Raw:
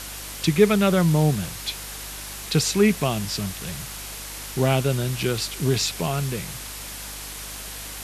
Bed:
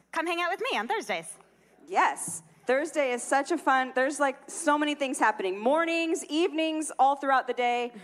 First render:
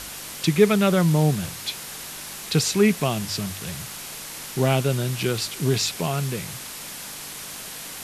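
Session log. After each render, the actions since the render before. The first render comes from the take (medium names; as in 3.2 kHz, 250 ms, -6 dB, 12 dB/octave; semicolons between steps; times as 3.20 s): de-hum 50 Hz, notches 2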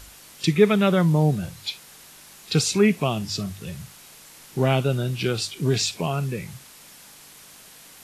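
noise print and reduce 11 dB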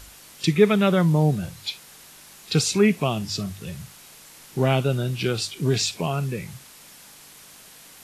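no audible change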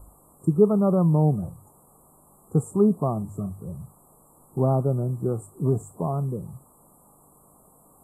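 Chebyshev band-stop 1.2–7.8 kHz, order 5; treble shelf 2.4 kHz -10 dB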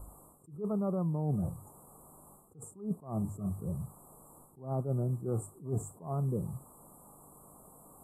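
reverse; compression 10:1, threshold -29 dBFS, peak gain reduction 17.5 dB; reverse; attacks held to a fixed rise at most 160 dB/s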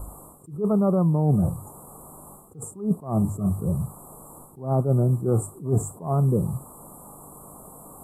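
trim +11.5 dB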